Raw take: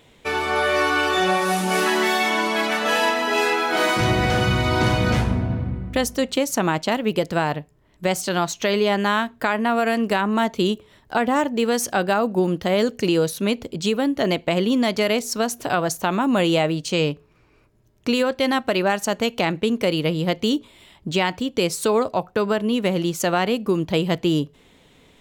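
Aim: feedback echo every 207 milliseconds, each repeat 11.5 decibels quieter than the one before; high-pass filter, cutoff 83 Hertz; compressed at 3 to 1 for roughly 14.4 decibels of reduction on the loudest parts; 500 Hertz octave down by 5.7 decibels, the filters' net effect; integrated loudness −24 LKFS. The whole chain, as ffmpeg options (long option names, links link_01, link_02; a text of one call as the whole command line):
ffmpeg -i in.wav -af "highpass=83,equalizer=frequency=500:width_type=o:gain=-7.5,acompressor=threshold=-38dB:ratio=3,aecho=1:1:207|414|621:0.266|0.0718|0.0194,volume=12dB" out.wav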